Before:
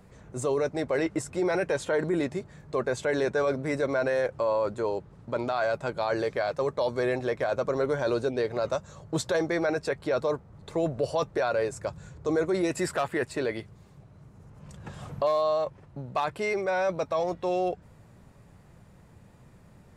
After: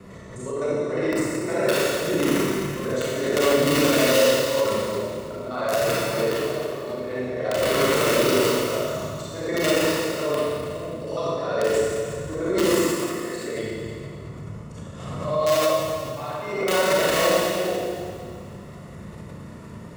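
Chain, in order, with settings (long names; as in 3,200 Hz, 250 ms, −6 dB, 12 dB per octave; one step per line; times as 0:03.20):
reversed piece by piece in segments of 51 ms
high-shelf EQ 7,000 Hz −4.5 dB
mains-hum notches 60/120/180 Hz
downward compressor 5 to 1, threshold −32 dBFS, peak gain reduction 9.5 dB
volume swells 324 ms
wrap-around overflow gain 27 dB
notch comb filter 800 Hz
four-comb reverb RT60 2.1 s, combs from 28 ms, DRR −7.5 dB
background raised ahead of every attack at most 53 dB per second
level +8.5 dB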